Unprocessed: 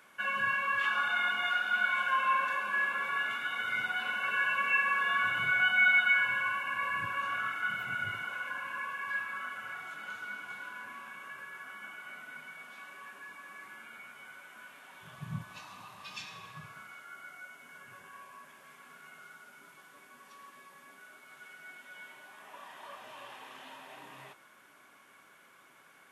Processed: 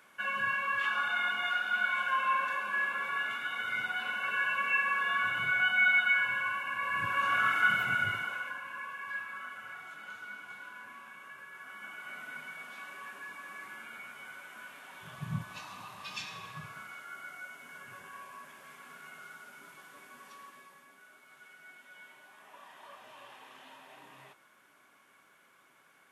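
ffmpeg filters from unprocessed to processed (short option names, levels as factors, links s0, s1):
-af "volume=5.31,afade=t=in:st=6.83:d=0.77:silence=0.354813,afade=t=out:st=7.6:d=1:silence=0.266073,afade=t=in:st=11.49:d=0.76:silence=0.473151,afade=t=out:st=20.24:d=0.64:silence=0.446684"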